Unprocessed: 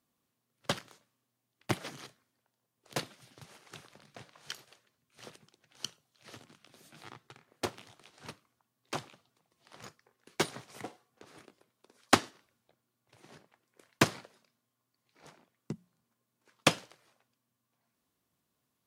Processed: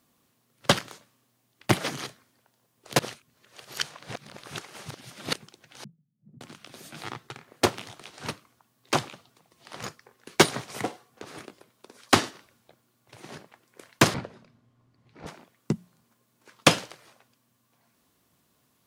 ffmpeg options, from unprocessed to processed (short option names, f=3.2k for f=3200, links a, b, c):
-filter_complex "[0:a]asettb=1/sr,asplit=3[a][b][c];[a]atrim=end=5.844[d];[b]atrim=start=5.84:end=6.41,asetpts=PTS-STARTPTS,afade=t=in:d=0.004:c=qsin,afade=t=out:st=0.566:d=0.004:c=qsin,asuperpass=centerf=170:order=4:qfactor=2.4[e];[c]atrim=start=6.406[f];[d][e]acrossfade=d=0.004:c1=hsin:c2=qsin[g];[g][f]acrossfade=d=0.004:c1=qsin:c2=hsin,asettb=1/sr,asplit=3[h][i][j];[h]atrim=end=14.144[k];[i]atrim=start=14.14:end=15.27,asetpts=PTS-STARTPTS,afade=t=in:d=0.004:c=qsin,afade=t=out:st=1.126:d=0.004:c=qsin,aemphasis=mode=reproduction:type=riaa[l];[j]atrim=start=15.266[m];[k][l]acrossfade=d=0.004:c1=hsin:c2=qsin[n];[n][m]acrossfade=d=0.004:c1=qsin:c2=hsin,asplit=3[o][p][q];[o]atrim=end=2.992[r];[p]atrim=start=2.988:end=5.332,asetpts=PTS-STARTPTS,areverse[s];[q]atrim=start=5.328[t];[r][s]acrossfade=d=0.004:c1=hsin:c2=hsin[u];[u][t]acrossfade=d=0.004:c1=hsin:c2=hsin,alimiter=level_in=13.5dB:limit=-1dB:release=50:level=0:latency=1,volume=-1dB"